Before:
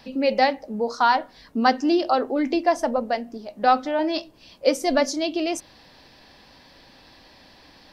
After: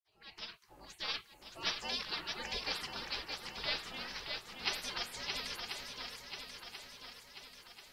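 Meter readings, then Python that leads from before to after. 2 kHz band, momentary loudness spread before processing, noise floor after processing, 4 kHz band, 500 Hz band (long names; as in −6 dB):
−11.5 dB, 8 LU, −64 dBFS, −4.0 dB, −27.0 dB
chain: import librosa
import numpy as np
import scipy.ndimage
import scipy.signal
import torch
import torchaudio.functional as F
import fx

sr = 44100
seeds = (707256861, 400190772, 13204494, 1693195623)

y = fx.fade_in_head(x, sr, length_s=1.36)
y = fx.spec_gate(y, sr, threshold_db=-30, keep='weak')
y = fx.echo_swing(y, sr, ms=1037, ratio=1.5, feedback_pct=49, wet_db=-5.0)
y = F.gain(torch.from_numpy(y), 3.0).numpy()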